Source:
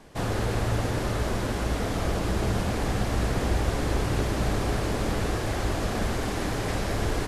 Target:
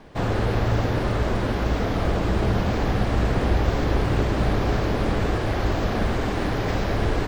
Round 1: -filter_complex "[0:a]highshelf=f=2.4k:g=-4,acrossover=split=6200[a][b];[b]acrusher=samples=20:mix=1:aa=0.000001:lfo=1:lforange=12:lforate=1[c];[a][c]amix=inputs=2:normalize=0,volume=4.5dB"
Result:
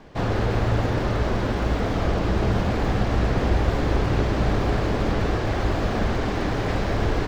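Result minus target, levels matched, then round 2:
decimation with a swept rate: distortion +7 dB
-filter_complex "[0:a]highshelf=f=2.4k:g=-4,acrossover=split=6200[a][b];[b]acrusher=samples=6:mix=1:aa=0.000001:lfo=1:lforange=3.6:lforate=1[c];[a][c]amix=inputs=2:normalize=0,volume=4.5dB"

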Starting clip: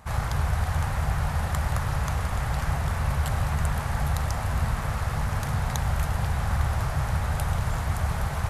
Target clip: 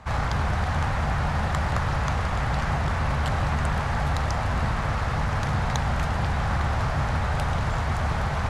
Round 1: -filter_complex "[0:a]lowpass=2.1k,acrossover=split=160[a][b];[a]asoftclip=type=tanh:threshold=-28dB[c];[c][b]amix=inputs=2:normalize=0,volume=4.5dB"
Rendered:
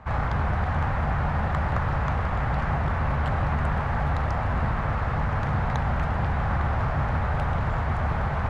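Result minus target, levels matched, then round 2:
4000 Hz band -8.5 dB
-filter_complex "[0:a]lowpass=5.2k,acrossover=split=160[a][b];[a]asoftclip=type=tanh:threshold=-28dB[c];[c][b]amix=inputs=2:normalize=0,volume=4.5dB"

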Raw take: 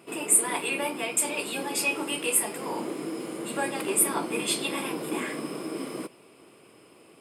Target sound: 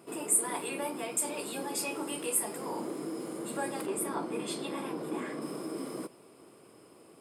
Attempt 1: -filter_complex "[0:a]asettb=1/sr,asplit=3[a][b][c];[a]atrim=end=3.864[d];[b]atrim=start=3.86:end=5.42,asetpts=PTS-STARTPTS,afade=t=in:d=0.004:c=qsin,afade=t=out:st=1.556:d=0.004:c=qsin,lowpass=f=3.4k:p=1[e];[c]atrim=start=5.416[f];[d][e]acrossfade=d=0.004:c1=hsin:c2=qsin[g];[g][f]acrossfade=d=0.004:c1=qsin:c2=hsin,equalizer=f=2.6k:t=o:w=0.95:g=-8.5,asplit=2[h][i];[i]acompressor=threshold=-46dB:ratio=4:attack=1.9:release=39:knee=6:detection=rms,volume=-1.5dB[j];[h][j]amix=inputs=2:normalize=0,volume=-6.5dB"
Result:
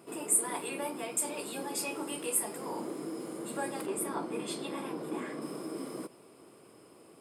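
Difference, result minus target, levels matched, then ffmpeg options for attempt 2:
compressor: peak gain reduction +6.5 dB
-filter_complex "[0:a]asettb=1/sr,asplit=3[a][b][c];[a]atrim=end=3.864[d];[b]atrim=start=3.86:end=5.42,asetpts=PTS-STARTPTS,afade=t=in:d=0.004:c=qsin,afade=t=out:st=1.556:d=0.004:c=qsin,lowpass=f=3.4k:p=1[e];[c]atrim=start=5.416[f];[d][e]acrossfade=d=0.004:c1=hsin:c2=qsin[g];[g][f]acrossfade=d=0.004:c1=qsin:c2=hsin,equalizer=f=2.6k:t=o:w=0.95:g=-8.5,asplit=2[h][i];[i]acompressor=threshold=-37.5dB:ratio=4:attack=1.9:release=39:knee=6:detection=rms,volume=-1.5dB[j];[h][j]amix=inputs=2:normalize=0,volume=-6.5dB"

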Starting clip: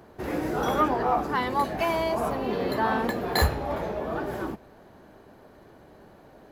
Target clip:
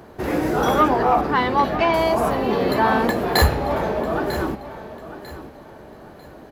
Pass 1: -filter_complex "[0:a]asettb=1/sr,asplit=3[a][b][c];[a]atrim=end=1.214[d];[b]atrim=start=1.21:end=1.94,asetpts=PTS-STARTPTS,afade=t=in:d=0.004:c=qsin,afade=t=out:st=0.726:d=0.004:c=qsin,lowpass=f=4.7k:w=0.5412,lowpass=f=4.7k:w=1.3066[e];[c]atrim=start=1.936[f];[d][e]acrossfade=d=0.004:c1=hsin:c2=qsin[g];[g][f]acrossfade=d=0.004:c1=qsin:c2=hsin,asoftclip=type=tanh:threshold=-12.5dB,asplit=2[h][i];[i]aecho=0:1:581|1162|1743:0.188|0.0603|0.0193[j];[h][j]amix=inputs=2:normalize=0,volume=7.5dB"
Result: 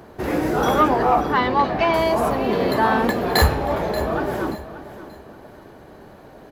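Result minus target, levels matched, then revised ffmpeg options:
echo 0.365 s early
-filter_complex "[0:a]asettb=1/sr,asplit=3[a][b][c];[a]atrim=end=1.214[d];[b]atrim=start=1.21:end=1.94,asetpts=PTS-STARTPTS,afade=t=in:d=0.004:c=qsin,afade=t=out:st=0.726:d=0.004:c=qsin,lowpass=f=4.7k:w=0.5412,lowpass=f=4.7k:w=1.3066[e];[c]atrim=start=1.936[f];[d][e]acrossfade=d=0.004:c1=hsin:c2=qsin[g];[g][f]acrossfade=d=0.004:c1=qsin:c2=hsin,asoftclip=type=tanh:threshold=-12.5dB,asplit=2[h][i];[i]aecho=0:1:946|1892|2838:0.188|0.0603|0.0193[j];[h][j]amix=inputs=2:normalize=0,volume=7.5dB"

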